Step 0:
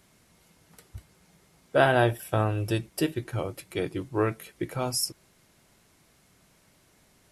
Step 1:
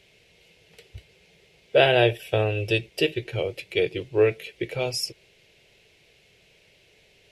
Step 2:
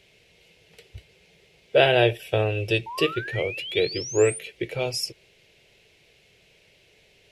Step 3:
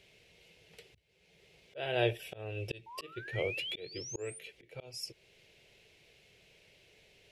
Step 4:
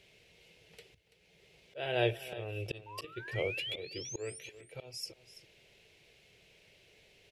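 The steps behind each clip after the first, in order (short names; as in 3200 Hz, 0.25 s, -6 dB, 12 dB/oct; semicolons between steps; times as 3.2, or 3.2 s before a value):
EQ curve 130 Hz 0 dB, 270 Hz -8 dB, 440 Hz +10 dB, 1200 Hz -10 dB, 2600 Hz +14 dB, 9400 Hz -8 dB
painted sound rise, 2.86–4.39, 880–9500 Hz -35 dBFS
auto swell 0.557 s; gain -4.5 dB
echo 0.334 s -15 dB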